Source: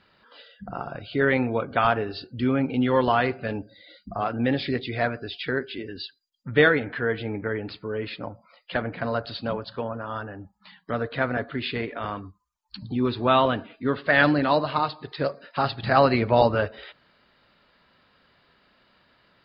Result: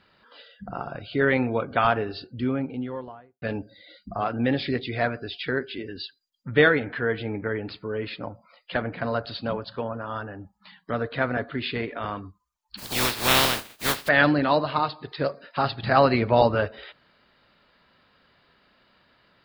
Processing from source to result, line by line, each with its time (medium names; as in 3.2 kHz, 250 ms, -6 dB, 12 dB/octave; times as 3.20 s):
2.01–3.42 s: studio fade out
12.77–14.07 s: spectral contrast reduction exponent 0.19